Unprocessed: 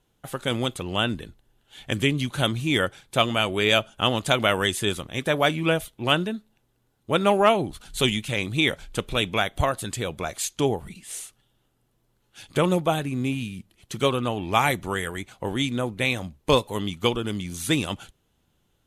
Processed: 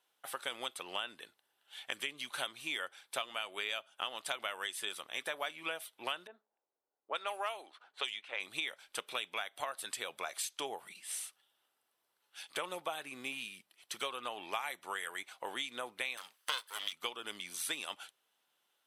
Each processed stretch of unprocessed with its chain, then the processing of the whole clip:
0:06.27–0:08.40: high-pass filter 400 Hz + high-shelf EQ 5,200 Hz +7 dB + low-pass that shuts in the quiet parts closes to 520 Hz, open at −16 dBFS
0:16.17–0:16.93: lower of the sound and its delayed copy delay 0.63 ms + high-pass filter 180 Hz + tilt shelving filter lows −9.5 dB, about 650 Hz
whole clip: high-pass filter 810 Hz 12 dB per octave; notch filter 6,800 Hz, Q 6.2; downward compressor 6 to 1, threshold −32 dBFS; level −3 dB

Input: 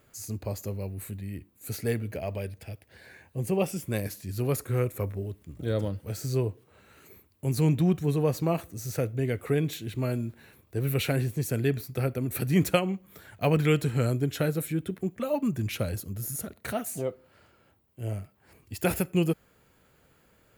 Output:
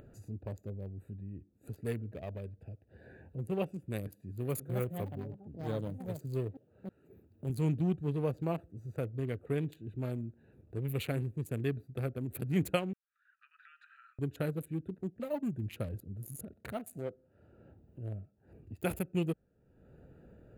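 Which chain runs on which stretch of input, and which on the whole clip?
0:04.12–0:07.50: high-pass filter 86 Hz + high-shelf EQ 12,000 Hz +8.5 dB + delay with pitch and tempo change per echo 380 ms, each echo +6 semitones, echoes 2, each echo −6 dB
0:12.93–0:14.19: downward compressor 8 to 1, threshold −33 dBFS + Butterworth high-pass 1,200 Hz 96 dB per octave + head-to-tape spacing loss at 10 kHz 30 dB
whole clip: adaptive Wiener filter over 41 samples; parametric band 5,500 Hz −10 dB 0.29 octaves; upward compression, threshold −34 dBFS; level −7 dB

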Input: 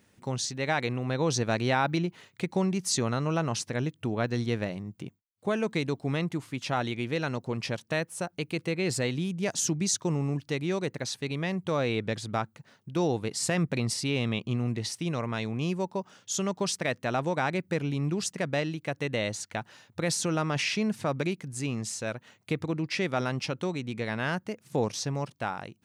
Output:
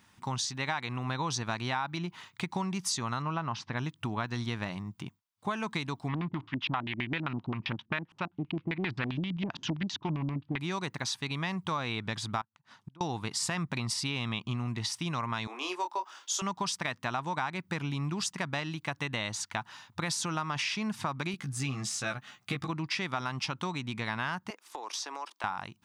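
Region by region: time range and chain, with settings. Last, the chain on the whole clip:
0:03.22–0:03.77: one scale factor per block 7 bits + high-frequency loss of the air 220 metres
0:06.08–0:10.59: auto-filter low-pass square 7.6 Hz 310–3,000 Hz + high-frequency loss of the air 110 metres + highs frequency-modulated by the lows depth 0.33 ms
0:12.41–0:13.01: treble cut that deepens with the level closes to 800 Hz, closed at −27 dBFS + gate with flip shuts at −33 dBFS, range −24 dB
0:15.47–0:16.42: Butterworth high-pass 310 Hz 48 dB per octave + double-tracking delay 22 ms −6 dB
0:21.32–0:22.69: de-essing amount 70% + Butterworth band-reject 960 Hz, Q 5.4 + double-tracking delay 15 ms −3 dB
0:24.50–0:25.44: Butterworth high-pass 330 Hz + downward compressor 12 to 1, threshold −35 dBFS
whole clip: graphic EQ with 10 bands 500 Hz −12 dB, 1,000 Hz +12 dB, 4,000 Hz +6 dB; downward compressor, threshold −29 dBFS; notch filter 4,200 Hz, Q 15

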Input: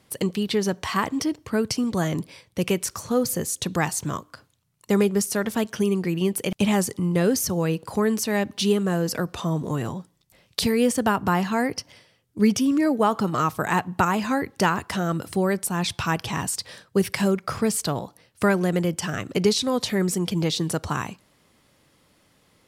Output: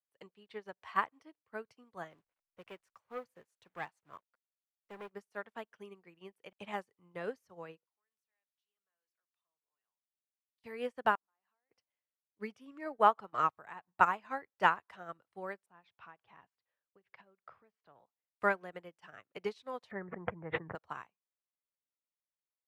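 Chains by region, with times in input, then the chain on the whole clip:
0:02.10–0:05.10: hold until the input has moved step −36.5 dBFS + hard clipping −19 dBFS
0:07.86–0:10.64: first difference + downward compressor 2 to 1, threshold −43 dBFS
0:11.15–0:11.71: Bessel high-pass filter 350 Hz, order 4 + volume swells 216 ms + downward compressor 16 to 1, threshold −39 dBFS
0:13.49–0:14.01: low-shelf EQ 120 Hz +6.5 dB + downward compressor 4 to 1, threshold −24 dBFS
0:15.66–0:18.00: high-frequency loss of the air 180 metres + downward compressor 10 to 1, threshold −25 dBFS
0:19.91–0:20.75: elliptic low-pass filter 1,900 Hz, stop band 60 dB + parametric band 110 Hz +13 dB 1.3 octaves + envelope flattener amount 100%
whole clip: three-way crossover with the lows and the highs turned down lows −16 dB, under 510 Hz, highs −18 dB, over 2,900 Hz; expander for the loud parts 2.5 to 1, over −47 dBFS

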